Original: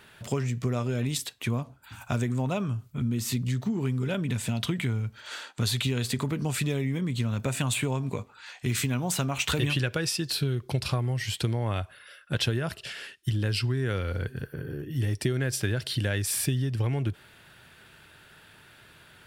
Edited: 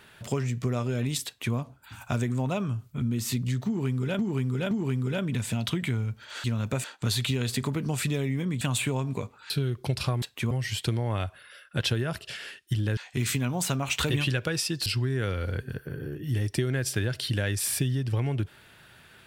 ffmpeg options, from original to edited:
-filter_complex "[0:a]asplit=11[a][b][c][d][e][f][g][h][i][j][k];[a]atrim=end=4.192[l];[b]atrim=start=3.668:end=4.192[m];[c]atrim=start=3.668:end=5.402[n];[d]atrim=start=7.168:end=7.572[o];[e]atrim=start=5.398:end=7.172[p];[f]atrim=start=7.568:end=8.462[q];[g]atrim=start=10.348:end=11.072[r];[h]atrim=start=1.258:end=1.552[s];[i]atrim=start=11.068:end=13.532[t];[j]atrim=start=8.458:end=10.352[u];[k]atrim=start=13.528[v];[l][m]acrossfade=d=0.004:c1=hsin:c2=hsin[w];[w][n]acrossfade=d=0.004:c1=hsin:c2=hsin[x];[x][o]acrossfade=d=0.004:c1=hsin:c2=hsin[y];[y][p]acrossfade=d=0.004:c1=hsin:c2=hsin[z];[z][q]acrossfade=d=0.004:c1=hsin:c2=hsin[aa];[aa][r]acrossfade=d=0.004:c1=hsin:c2=hsin[ab];[ab][s]acrossfade=d=0.004:c1=hsin:c2=hsin[ac];[ac][t]acrossfade=d=0.004:c1=hsin:c2=hsin[ad];[ad][u]acrossfade=d=0.004:c1=hsin:c2=hsin[ae];[ae][v]acrossfade=d=0.004:c1=hsin:c2=hsin"

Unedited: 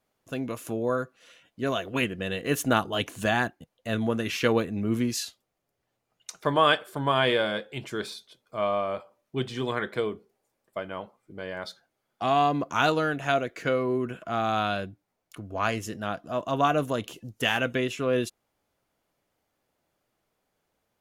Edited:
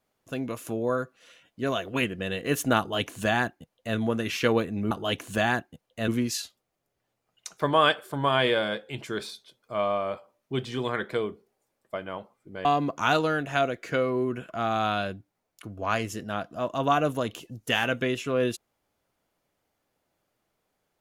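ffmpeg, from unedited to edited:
-filter_complex "[0:a]asplit=4[a][b][c][d];[a]atrim=end=4.912[e];[b]atrim=start=2.788:end=3.962[f];[c]atrim=start=4.908:end=11.482[g];[d]atrim=start=12.378[h];[e][f]acrossfade=d=0.004:c1=hsin:c2=hsin[i];[i][g]acrossfade=d=0.004:c1=hsin:c2=hsin[j];[j][h]acrossfade=d=0.004:c1=hsin:c2=hsin"

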